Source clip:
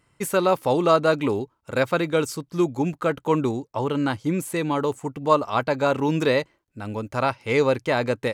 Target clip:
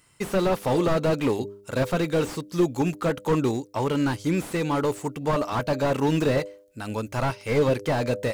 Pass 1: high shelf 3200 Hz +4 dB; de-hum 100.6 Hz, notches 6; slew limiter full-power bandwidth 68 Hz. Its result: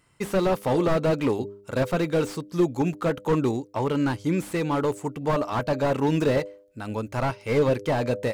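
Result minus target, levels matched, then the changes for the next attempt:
8000 Hz band -3.0 dB
change: high shelf 3200 Hz +14 dB

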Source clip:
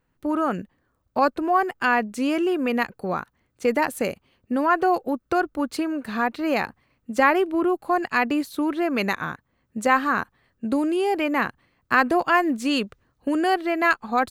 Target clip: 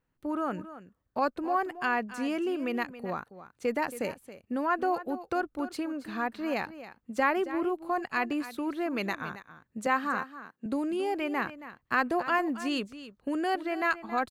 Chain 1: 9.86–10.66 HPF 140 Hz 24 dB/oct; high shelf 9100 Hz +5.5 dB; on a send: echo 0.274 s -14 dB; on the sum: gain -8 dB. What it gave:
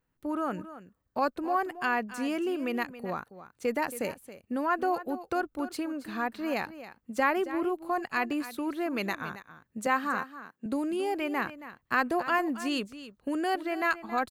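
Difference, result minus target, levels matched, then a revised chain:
8000 Hz band +3.5 dB
9.86–10.66 HPF 140 Hz 24 dB/oct; high shelf 9100 Hz -2.5 dB; on a send: echo 0.274 s -14 dB; on the sum: gain -8 dB

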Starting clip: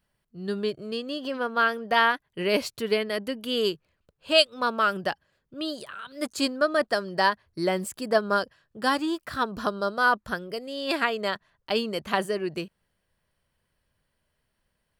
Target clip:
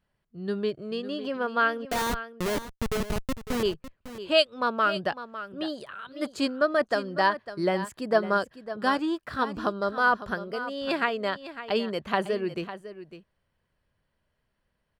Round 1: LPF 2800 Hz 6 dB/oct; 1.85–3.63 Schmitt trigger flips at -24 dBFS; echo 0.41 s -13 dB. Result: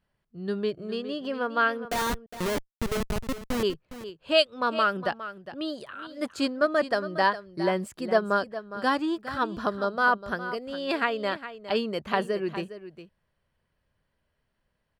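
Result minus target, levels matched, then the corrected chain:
echo 0.143 s early
LPF 2800 Hz 6 dB/oct; 1.85–3.63 Schmitt trigger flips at -24 dBFS; echo 0.553 s -13 dB

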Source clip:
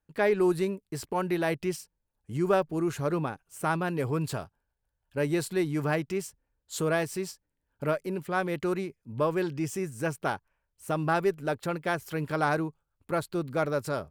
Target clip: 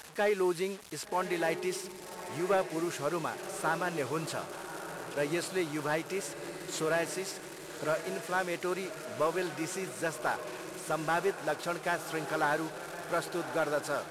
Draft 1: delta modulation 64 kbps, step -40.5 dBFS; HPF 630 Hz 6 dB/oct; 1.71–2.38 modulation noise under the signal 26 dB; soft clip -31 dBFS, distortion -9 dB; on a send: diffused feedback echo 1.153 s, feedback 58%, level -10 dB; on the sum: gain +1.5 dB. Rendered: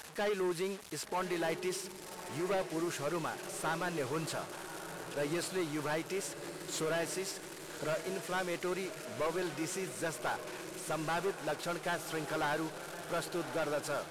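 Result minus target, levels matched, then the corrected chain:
soft clip: distortion +14 dB
delta modulation 64 kbps, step -40.5 dBFS; HPF 630 Hz 6 dB/oct; 1.71–2.38 modulation noise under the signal 26 dB; soft clip -19.5 dBFS, distortion -22 dB; on a send: diffused feedback echo 1.153 s, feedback 58%, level -10 dB; on the sum: gain +1.5 dB

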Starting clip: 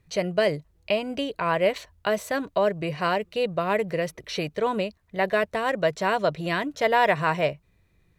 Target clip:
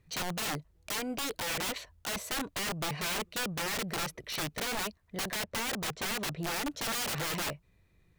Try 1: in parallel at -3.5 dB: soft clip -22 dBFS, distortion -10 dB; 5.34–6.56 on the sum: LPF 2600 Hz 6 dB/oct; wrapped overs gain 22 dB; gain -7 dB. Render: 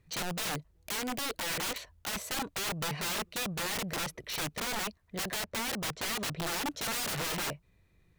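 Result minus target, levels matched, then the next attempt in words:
soft clip: distortion -5 dB
in parallel at -3.5 dB: soft clip -30 dBFS, distortion -5 dB; 5.34–6.56 on the sum: LPF 2600 Hz 6 dB/oct; wrapped overs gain 22 dB; gain -7 dB

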